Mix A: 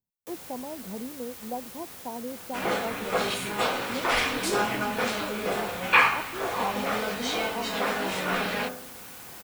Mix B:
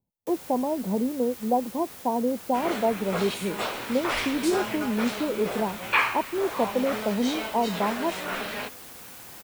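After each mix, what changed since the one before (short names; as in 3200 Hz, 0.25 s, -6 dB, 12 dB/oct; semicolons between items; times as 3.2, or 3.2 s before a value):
speech +11.0 dB; second sound: send off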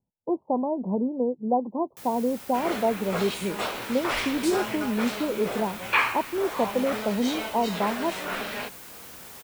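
first sound: entry +1.70 s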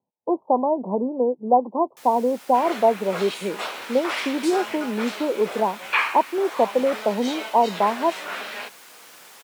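speech +9.0 dB; master: add weighting filter A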